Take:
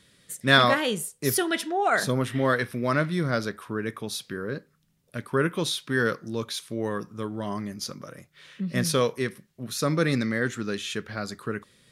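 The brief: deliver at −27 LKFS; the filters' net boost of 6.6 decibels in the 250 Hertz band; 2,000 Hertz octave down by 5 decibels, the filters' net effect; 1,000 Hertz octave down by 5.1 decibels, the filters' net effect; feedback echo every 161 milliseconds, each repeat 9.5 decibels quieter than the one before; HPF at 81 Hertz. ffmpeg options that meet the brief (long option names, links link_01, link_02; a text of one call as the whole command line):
ffmpeg -i in.wav -af "highpass=81,equalizer=frequency=250:width_type=o:gain=8.5,equalizer=frequency=1000:width_type=o:gain=-6.5,equalizer=frequency=2000:width_type=o:gain=-4,aecho=1:1:161|322|483|644:0.335|0.111|0.0365|0.012,volume=-2.5dB" out.wav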